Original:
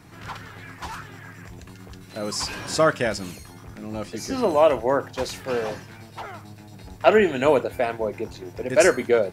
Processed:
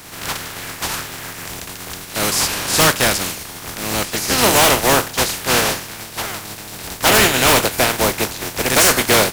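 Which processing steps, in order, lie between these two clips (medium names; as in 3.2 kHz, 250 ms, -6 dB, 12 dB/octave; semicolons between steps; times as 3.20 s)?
spectral contrast reduction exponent 0.36; in parallel at -8 dB: sine folder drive 18 dB, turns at 2 dBFS; on the sum: trim -4.5 dB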